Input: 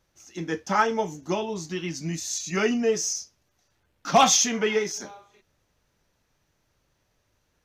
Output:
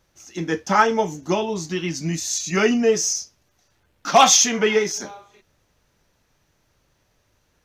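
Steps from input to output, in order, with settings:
0:04.09–0:04.58: high-pass filter 490 Hz → 170 Hz 6 dB per octave
level +5.5 dB

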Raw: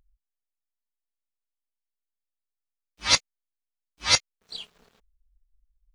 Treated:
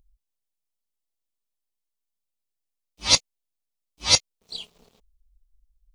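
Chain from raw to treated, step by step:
parametric band 1,600 Hz −12.5 dB 0.96 octaves
level +4 dB

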